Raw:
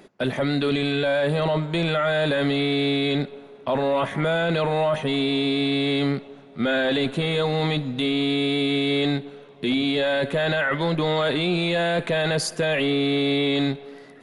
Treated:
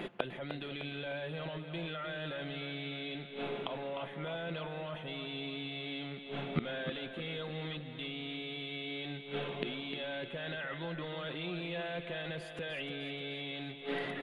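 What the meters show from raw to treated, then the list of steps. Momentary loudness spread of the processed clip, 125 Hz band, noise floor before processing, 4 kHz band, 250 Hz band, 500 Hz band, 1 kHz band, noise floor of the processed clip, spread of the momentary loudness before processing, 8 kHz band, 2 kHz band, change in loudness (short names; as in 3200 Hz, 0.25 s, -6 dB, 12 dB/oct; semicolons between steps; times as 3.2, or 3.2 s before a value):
3 LU, -16.0 dB, -46 dBFS, -15.0 dB, -19.0 dB, -17.5 dB, -16.0 dB, -47 dBFS, 4 LU, n/a, -14.5 dB, -17.0 dB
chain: resonant high shelf 4100 Hz -9.5 dB, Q 3; comb 5.8 ms, depth 34%; flipped gate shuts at -26 dBFS, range -27 dB; on a send: feedback echo 0.304 s, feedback 52%, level -9 dB; on the sum: gain +7.5 dB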